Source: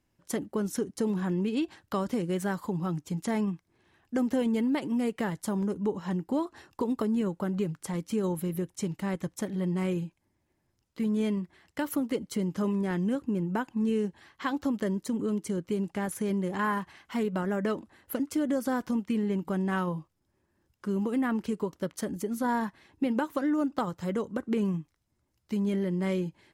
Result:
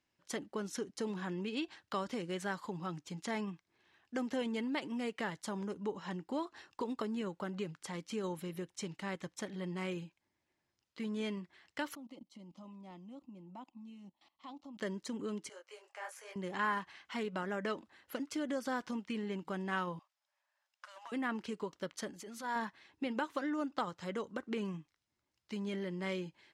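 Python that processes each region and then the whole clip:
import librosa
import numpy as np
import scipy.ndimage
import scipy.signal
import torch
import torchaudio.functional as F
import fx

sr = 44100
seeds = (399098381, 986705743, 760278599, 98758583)

y = fx.chain(x, sr, fx.high_shelf(hz=4900.0, db=-11.0),
    fx.level_steps(step_db=19),
    fx.fixed_phaser(hz=430.0, stages=6), at=(11.95, 14.79))
y = fx.chain(y, sr, fx.steep_highpass(hz=510.0, slope=36),
    fx.peak_eq(hz=3600.0, db=-8.0, octaves=0.34),
    fx.detune_double(cents=40), at=(15.49, 16.36))
y = fx.chain(y, sr, fx.brickwall_highpass(low_hz=550.0),
    fx.doppler_dist(depth_ms=0.24), at=(19.99, 21.12))
y = fx.chain(y, sr, fx.low_shelf(hz=440.0, db=-9.0),
    fx.transient(attack_db=-7, sustain_db=6), at=(22.1, 22.56))
y = scipy.signal.sosfilt(scipy.signal.butter(2, 4500.0, 'lowpass', fs=sr, output='sos'), y)
y = fx.tilt_eq(y, sr, slope=3.0)
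y = y * 10.0 ** (-4.5 / 20.0)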